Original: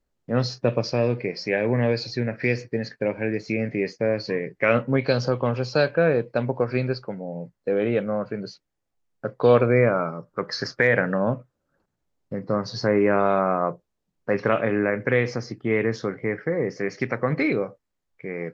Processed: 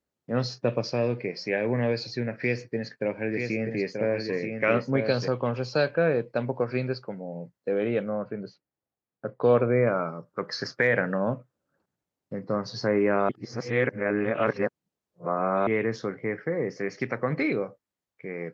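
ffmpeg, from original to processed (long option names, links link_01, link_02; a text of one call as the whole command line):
ffmpeg -i in.wav -filter_complex "[0:a]asettb=1/sr,asplit=3[link_01][link_02][link_03];[link_01]atrim=end=2.364[link_04];[link_02]atrim=start=2.36:end=5.28,asetpts=PTS-STARTPTS,afade=type=in:duration=0.004:curve=qsin,afade=type=out:start_time=2.916:duration=0.004:curve=qsin,aecho=1:1:933:0.562,atrim=end_sample=128772[link_05];[link_03]atrim=start=5.276[link_06];[link_04][link_05]acrossfade=duration=0.004:curve1=hsin:curve2=qsin[link_07];[link_07][link_06]acrossfade=duration=0.004:curve1=qsin:curve2=hsin,asettb=1/sr,asplit=3[link_08][link_09][link_10];[link_08]atrim=end=8.094[link_11];[link_09]atrim=start=8.09:end=9.87,asetpts=PTS-STARTPTS,afade=type=in:duration=0.004:curve=qsin,afade=type=out:start_time=1.776:duration=0.004:curve=qsin,lowpass=frequency=1600:poles=1[link_12];[link_10]atrim=start=9.866[link_13];[link_11][link_12]acrossfade=duration=0.004:curve1=hsin:curve2=qsin[link_14];[link_14][link_13]acrossfade=duration=0.004:curve1=qsin:curve2=hsin,asplit=3[link_15][link_16][link_17];[link_15]atrim=end=13.292[link_18];[link_16]atrim=start=13.288:end=15.672,asetpts=PTS-STARTPTS,areverse[link_19];[link_17]atrim=start=15.668[link_20];[link_18][link_19]acrossfade=duration=0.004:curve1=hsin:curve2=hsin[link_21];[link_21][link_20]acrossfade=duration=0.004:curve1=hsin:curve2=hsin,highpass=100,volume=-3.5dB" out.wav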